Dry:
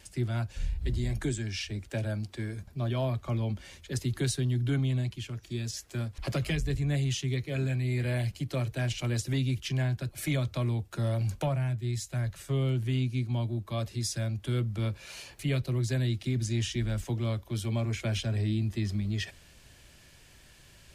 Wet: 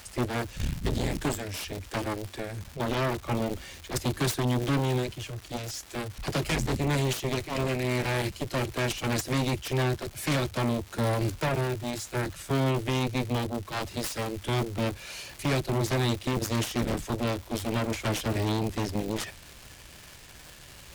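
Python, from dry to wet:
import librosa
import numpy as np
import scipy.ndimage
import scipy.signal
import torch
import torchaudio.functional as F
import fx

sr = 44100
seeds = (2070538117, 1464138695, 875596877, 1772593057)

y = fx.dmg_crackle(x, sr, seeds[0], per_s=490.0, level_db=-39.0)
y = fx.cheby_harmonics(y, sr, harmonics=(7,), levels_db=(-8,), full_scale_db=-19.0)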